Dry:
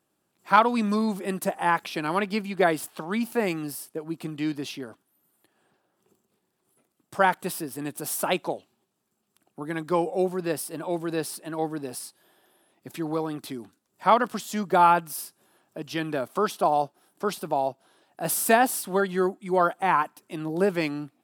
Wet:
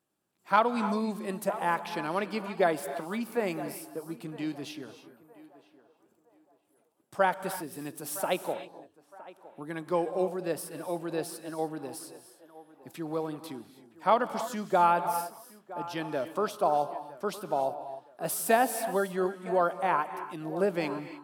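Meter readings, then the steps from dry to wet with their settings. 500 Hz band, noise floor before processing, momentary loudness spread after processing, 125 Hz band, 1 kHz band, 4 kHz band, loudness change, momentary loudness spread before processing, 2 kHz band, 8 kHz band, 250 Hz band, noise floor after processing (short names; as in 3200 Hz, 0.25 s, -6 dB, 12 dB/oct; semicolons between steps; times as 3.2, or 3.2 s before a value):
-3.0 dB, -76 dBFS, 15 LU, -6.0 dB, -4.5 dB, -6.0 dB, -4.5 dB, 15 LU, -6.0 dB, -6.0 dB, -6.0 dB, -69 dBFS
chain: narrowing echo 0.964 s, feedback 40%, band-pass 720 Hz, level -14.5 dB; non-linear reverb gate 0.33 s rising, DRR 11 dB; dynamic EQ 570 Hz, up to +5 dB, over -36 dBFS, Q 2; gain -6.5 dB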